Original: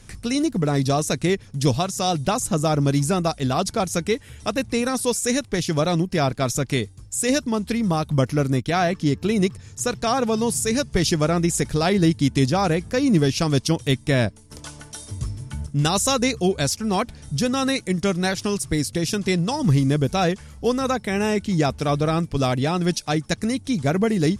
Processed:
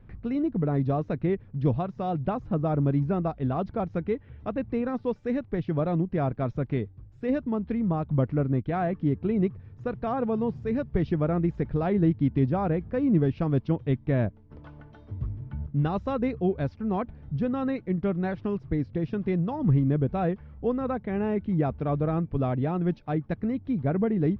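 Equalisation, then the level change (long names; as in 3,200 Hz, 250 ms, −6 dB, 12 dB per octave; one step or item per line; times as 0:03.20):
high-frequency loss of the air 280 metres
head-to-tape spacing loss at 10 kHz 43 dB
−3.0 dB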